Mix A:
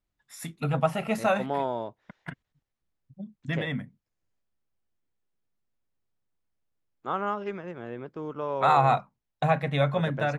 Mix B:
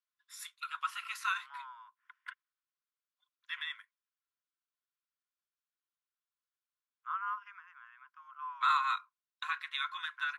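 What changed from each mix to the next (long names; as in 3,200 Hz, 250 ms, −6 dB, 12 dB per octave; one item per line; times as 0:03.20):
second voice: add moving average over 11 samples
master: add Chebyshev high-pass with heavy ripple 1,000 Hz, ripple 6 dB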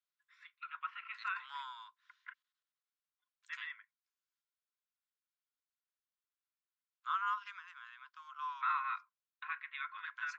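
first voice: add transistor ladder low-pass 2,700 Hz, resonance 40%
second voice: remove moving average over 11 samples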